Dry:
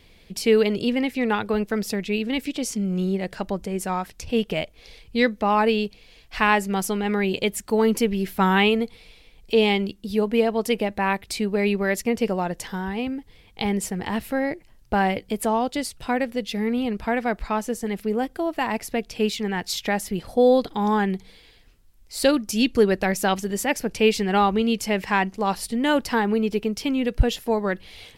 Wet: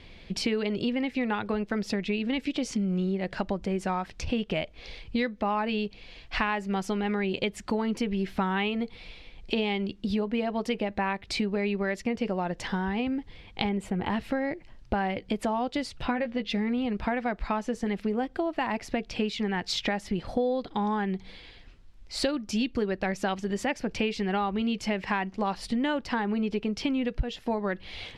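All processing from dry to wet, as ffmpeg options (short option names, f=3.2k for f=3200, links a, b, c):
-filter_complex "[0:a]asettb=1/sr,asplit=3[a][b][c];[a]atrim=end=13.694[d];[b]atrim=start=13.69:end=14.1,asetpts=PTS-STARTPTS,afade=t=in:d=0.004:c=qsin,afade=t=out:st=0.406:d=0.004:c=qsin,equalizer=f=5.4k:w=1.8:g=-14.5,bandreject=f=1.8k:w=8.2[e];[c]atrim=start=14.096[f];[d][e]acrossfade=d=0.004:c1=hsin:c2=qsin[g];[g][f]acrossfade=d=0.004:c1=qsin:c2=hsin,asettb=1/sr,asplit=3[h][i][j];[h]atrim=end=16.024[k];[i]atrim=start=16.02:end=16.5,asetpts=PTS-STARTPTS,afade=t=in:d=0.004:c=qsin,afade=t=out:st=0.476:d=0.004:c=qsin,lowpass=4.4k,asplit=2[l][m];[m]adelay=13,volume=-6dB[n];[l][n]amix=inputs=2:normalize=0,atrim=end_sample=21168[o];[j]atrim=start=16.496[p];[k][o]acrossfade=d=0.004:c1=hsin:c2=qsin[q];[q][p]acrossfade=d=0.004:c1=qsin:c2=hsin,lowpass=4.3k,bandreject=f=450:w=12,acompressor=threshold=-30dB:ratio=6,volume=4.5dB"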